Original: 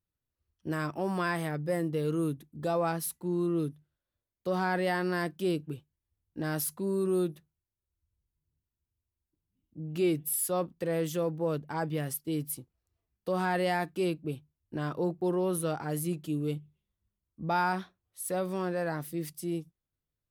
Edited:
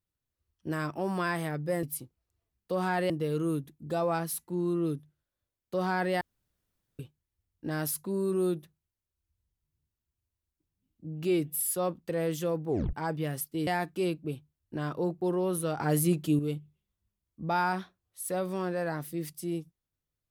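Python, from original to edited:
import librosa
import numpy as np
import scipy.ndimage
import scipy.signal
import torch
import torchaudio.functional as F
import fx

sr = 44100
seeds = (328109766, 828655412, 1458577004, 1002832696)

y = fx.edit(x, sr, fx.room_tone_fill(start_s=4.94, length_s=0.78),
    fx.tape_stop(start_s=11.41, length_s=0.25),
    fx.move(start_s=12.4, length_s=1.27, to_s=1.83),
    fx.clip_gain(start_s=15.78, length_s=0.61, db=6.5), tone=tone)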